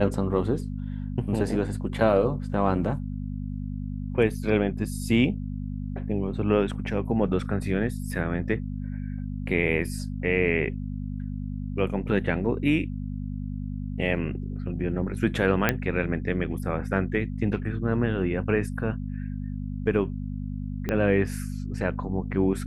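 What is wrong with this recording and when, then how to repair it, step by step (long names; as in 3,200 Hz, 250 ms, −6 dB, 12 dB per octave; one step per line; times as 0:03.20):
mains hum 50 Hz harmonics 5 −32 dBFS
0:15.69: click −7 dBFS
0:20.89: click −14 dBFS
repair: click removal
hum removal 50 Hz, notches 5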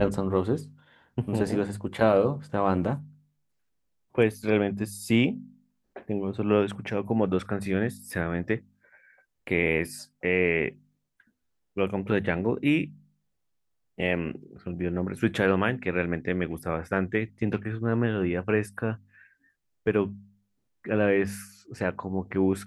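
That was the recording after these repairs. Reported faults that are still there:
0:20.89: click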